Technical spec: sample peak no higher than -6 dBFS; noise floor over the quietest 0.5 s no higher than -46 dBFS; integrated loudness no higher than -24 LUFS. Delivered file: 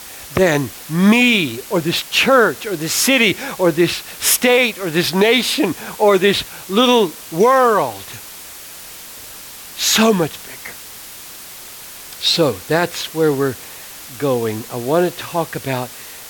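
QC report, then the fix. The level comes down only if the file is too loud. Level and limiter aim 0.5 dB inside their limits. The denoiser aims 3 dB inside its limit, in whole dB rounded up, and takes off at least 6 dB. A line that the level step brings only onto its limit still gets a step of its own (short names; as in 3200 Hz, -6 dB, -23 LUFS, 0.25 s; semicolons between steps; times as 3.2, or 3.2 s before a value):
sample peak -2.0 dBFS: fail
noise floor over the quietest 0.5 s -35 dBFS: fail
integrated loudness -16.0 LUFS: fail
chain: denoiser 6 dB, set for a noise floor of -35 dBFS; gain -8.5 dB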